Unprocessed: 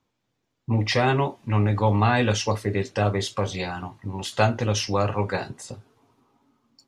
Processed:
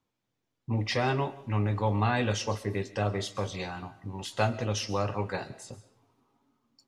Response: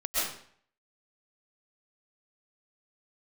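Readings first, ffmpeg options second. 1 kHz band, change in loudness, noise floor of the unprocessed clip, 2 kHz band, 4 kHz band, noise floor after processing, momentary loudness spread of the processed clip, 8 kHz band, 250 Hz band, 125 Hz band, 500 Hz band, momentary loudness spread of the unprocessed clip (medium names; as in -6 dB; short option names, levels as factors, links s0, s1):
-6.5 dB, -6.5 dB, -77 dBFS, -6.5 dB, -6.5 dB, -82 dBFS, 14 LU, -6.5 dB, -6.5 dB, -6.5 dB, -6.5 dB, 14 LU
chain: -filter_complex "[0:a]asplit=2[s0][s1];[1:a]atrim=start_sample=2205,highshelf=f=8200:g=9.5[s2];[s1][s2]afir=irnorm=-1:irlink=0,volume=0.0531[s3];[s0][s3]amix=inputs=2:normalize=0,volume=0.447"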